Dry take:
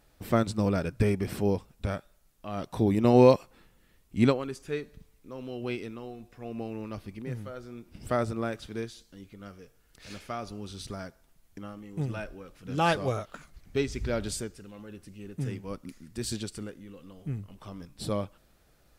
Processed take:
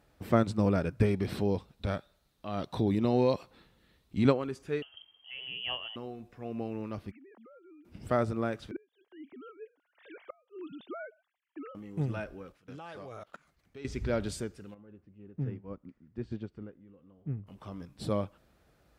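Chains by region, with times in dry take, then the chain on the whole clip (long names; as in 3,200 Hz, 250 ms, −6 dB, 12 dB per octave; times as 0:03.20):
0:01.05–0:04.25: parametric band 3,900 Hz +10.5 dB 0.48 octaves + notch filter 7,100 Hz, Q 29 + downward compressor 2.5 to 1, threshold −24 dBFS
0:04.82–0:05.96: voice inversion scrambler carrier 3,200 Hz + low-shelf EQ 60 Hz +7 dB
0:07.11–0:07.85: three sine waves on the formant tracks + high-pass filter 280 Hz 24 dB per octave + downward compressor 12 to 1, threshold −52 dBFS
0:08.71–0:11.75: three sine waves on the formant tracks + gate with flip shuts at −29 dBFS, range −32 dB
0:12.52–0:13.85: low-shelf EQ 350 Hz −8.5 dB + output level in coarse steps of 22 dB
0:14.74–0:17.47: head-to-tape spacing loss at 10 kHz 36 dB + notch filter 4,000 Hz, Q 26 + expander for the loud parts, over −47 dBFS
whole clip: high-pass filter 52 Hz; high-shelf EQ 3,900 Hz −9.5 dB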